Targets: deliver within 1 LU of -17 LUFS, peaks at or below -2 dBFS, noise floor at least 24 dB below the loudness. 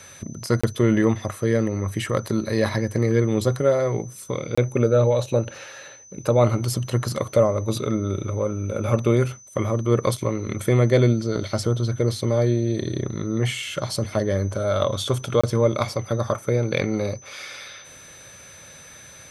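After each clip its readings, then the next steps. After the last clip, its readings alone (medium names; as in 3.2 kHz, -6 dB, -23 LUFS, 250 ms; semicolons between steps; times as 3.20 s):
dropouts 3; longest dropout 25 ms; steady tone 6.1 kHz; tone level -45 dBFS; loudness -23.0 LUFS; peak level -5.0 dBFS; loudness target -17.0 LUFS
-> interpolate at 0.61/4.55/15.41 s, 25 ms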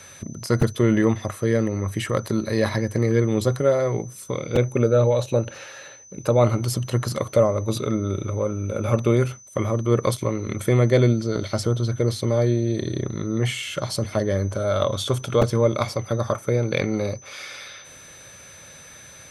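dropouts 0; steady tone 6.1 kHz; tone level -45 dBFS
-> band-stop 6.1 kHz, Q 30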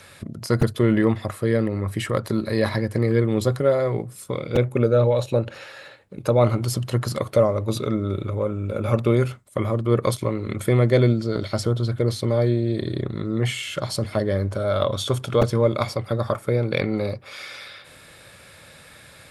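steady tone not found; loudness -23.0 LUFS; peak level -4.5 dBFS; loudness target -17.0 LUFS
-> trim +6 dB; peak limiter -2 dBFS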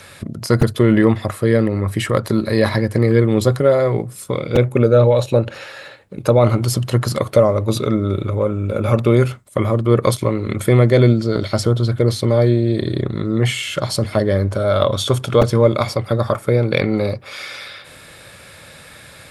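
loudness -17.0 LUFS; peak level -2.0 dBFS; noise floor -42 dBFS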